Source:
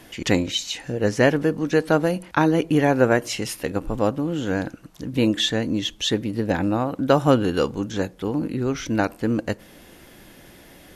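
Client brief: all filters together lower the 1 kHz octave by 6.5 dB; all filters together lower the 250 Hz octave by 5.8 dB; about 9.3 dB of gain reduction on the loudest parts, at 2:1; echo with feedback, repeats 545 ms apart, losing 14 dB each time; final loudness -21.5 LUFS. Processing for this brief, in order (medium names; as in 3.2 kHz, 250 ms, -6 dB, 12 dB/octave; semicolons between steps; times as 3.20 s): peaking EQ 250 Hz -7 dB; peaking EQ 1 kHz -9 dB; compression 2:1, threshold -33 dBFS; feedback delay 545 ms, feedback 20%, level -14 dB; trim +11.5 dB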